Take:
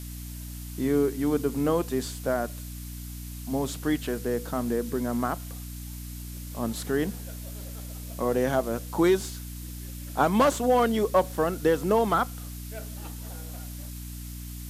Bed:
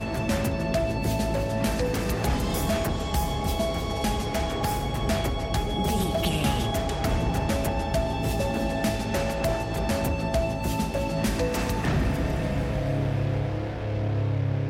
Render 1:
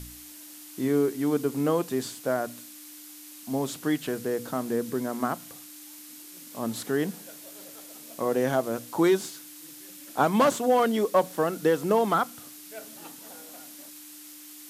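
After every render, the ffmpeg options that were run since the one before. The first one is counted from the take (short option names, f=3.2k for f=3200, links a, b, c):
-af "bandreject=f=60:t=h:w=4,bandreject=f=120:t=h:w=4,bandreject=f=180:t=h:w=4,bandreject=f=240:t=h:w=4"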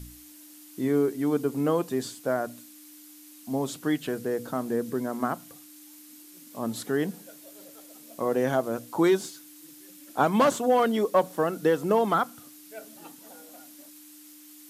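-af "afftdn=nr=6:nf=-46"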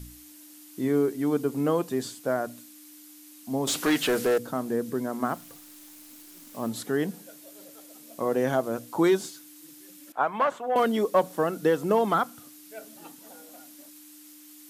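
-filter_complex "[0:a]asettb=1/sr,asplit=3[a][b][c];[a]atrim=end=3.674[d];[b]atrim=start=3.67:end=4.38,asetpts=PTS-STARTPTS,afade=t=in:d=0.004:c=qsin,afade=t=out:st=0.706:d=0.004:c=qsin,asplit=2[e][f];[f]highpass=f=720:p=1,volume=22dB,asoftclip=type=tanh:threshold=-15dB[g];[e][g]amix=inputs=2:normalize=0,lowpass=f=7.1k:p=1,volume=-6dB[h];[c]atrim=start=4.376[i];[d][h]acrossfade=d=0.004:c1=hsin:c2=qsin[j];[j][i]acrossfade=d=0.004:c1=qsin:c2=hsin,asettb=1/sr,asplit=3[k][l][m];[k]atrim=end=5.264[n];[l]atrim=start=5.26:end=6.69,asetpts=PTS-STARTPTS,afade=t=in:d=0.004:c=qsin,afade=t=out:st=1.426:d=0.004:c=qsin,acrusher=bits=9:dc=4:mix=0:aa=0.000001[o];[m]atrim=start=6.686[p];[n][o]acrossfade=d=0.004:c1=hsin:c2=qsin[q];[q][p]acrossfade=d=0.004:c1=qsin:c2=hsin,asettb=1/sr,asplit=3[r][s][t];[r]atrim=end=10.124[u];[s]atrim=start=10.12:end=10.76,asetpts=PTS-STARTPTS,afade=t=in:d=0.004:c=qsin,afade=t=out:st=0.636:d=0.004:c=qsin,acrossover=split=570 2500:gain=0.158 1 0.112[v][w][x];[v][w][x]amix=inputs=3:normalize=0[y];[t]atrim=start=10.756[z];[u][y]acrossfade=d=0.004:c1=hsin:c2=qsin[aa];[aa][z]acrossfade=d=0.004:c1=qsin:c2=hsin"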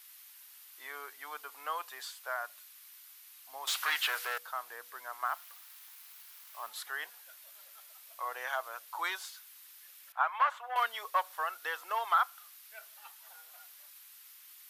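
-af "highpass=f=980:w=0.5412,highpass=f=980:w=1.3066,equalizer=f=7.6k:w=1:g=-9"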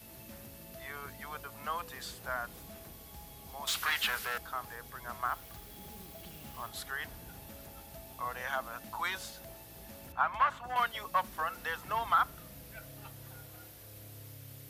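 -filter_complex "[1:a]volume=-25.5dB[a];[0:a][a]amix=inputs=2:normalize=0"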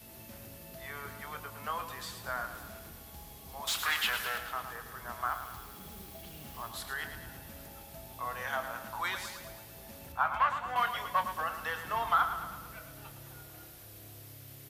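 -filter_complex "[0:a]asplit=2[a][b];[b]adelay=26,volume=-10.5dB[c];[a][c]amix=inputs=2:normalize=0,aecho=1:1:110|220|330|440|550|660|770:0.335|0.194|0.113|0.0654|0.0379|0.022|0.0128"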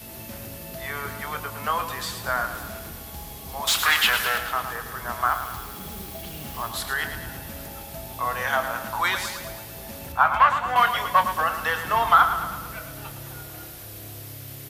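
-af "volume=11dB"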